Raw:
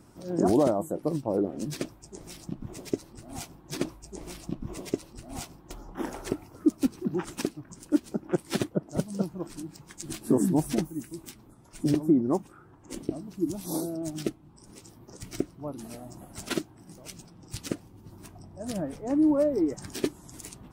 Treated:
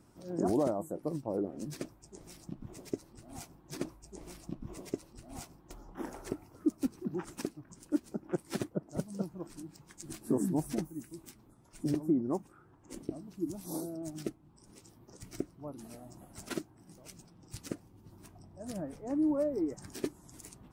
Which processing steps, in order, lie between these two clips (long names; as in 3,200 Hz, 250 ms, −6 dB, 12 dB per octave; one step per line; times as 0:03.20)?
dynamic equaliser 3,300 Hz, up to −5 dB, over −56 dBFS, Q 1.5
level −7 dB